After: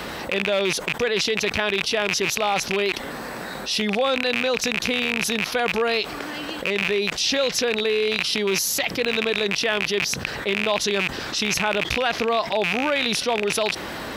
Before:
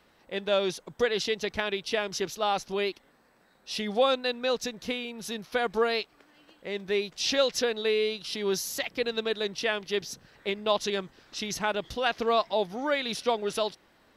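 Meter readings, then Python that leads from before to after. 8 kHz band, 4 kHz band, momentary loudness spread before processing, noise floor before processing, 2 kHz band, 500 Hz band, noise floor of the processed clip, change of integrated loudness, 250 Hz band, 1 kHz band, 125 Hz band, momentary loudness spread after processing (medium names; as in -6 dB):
+10.5 dB, +8.0 dB, 10 LU, -63 dBFS, +10.5 dB, +4.5 dB, -33 dBFS, +7.0 dB, +7.5 dB, +4.5 dB, +10.0 dB, 4 LU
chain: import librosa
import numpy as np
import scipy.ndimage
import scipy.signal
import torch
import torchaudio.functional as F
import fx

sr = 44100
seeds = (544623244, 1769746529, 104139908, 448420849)

y = fx.rattle_buzz(x, sr, strikes_db=-49.0, level_db=-20.0)
y = scipy.signal.sosfilt(scipy.signal.butter(2, 44.0, 'highpass', fs=sr, output='sos'), y)
y = fx.env_flatten(y, sr, amount_pct=70)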